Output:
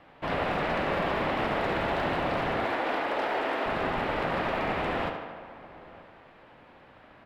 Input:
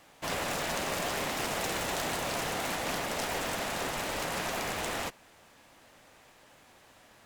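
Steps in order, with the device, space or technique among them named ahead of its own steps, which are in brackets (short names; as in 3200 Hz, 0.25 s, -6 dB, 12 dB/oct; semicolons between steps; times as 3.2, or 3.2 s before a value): 2.65–3.66 HPF 290 Hz 24 dB/oct; tape echo 72 ms, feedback 75%, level -6 dB, low-pass 5200 Hz; shout across a valley (air absorption 430 m; outdoor echo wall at 160 m, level -19 dB); gain +6 dB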